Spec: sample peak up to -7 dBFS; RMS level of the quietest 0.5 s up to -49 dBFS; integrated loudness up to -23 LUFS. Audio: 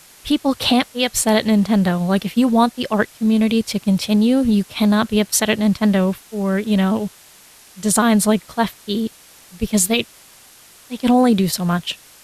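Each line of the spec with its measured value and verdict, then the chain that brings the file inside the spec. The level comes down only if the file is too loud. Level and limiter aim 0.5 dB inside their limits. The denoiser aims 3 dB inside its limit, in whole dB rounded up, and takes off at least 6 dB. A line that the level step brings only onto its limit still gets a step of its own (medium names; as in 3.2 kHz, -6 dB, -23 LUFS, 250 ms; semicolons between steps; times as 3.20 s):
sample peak -5.0 dBFS: fail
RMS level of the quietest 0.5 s -46 dBFS: fail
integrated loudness -18.0 LUFS: fail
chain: trim -5.5 dB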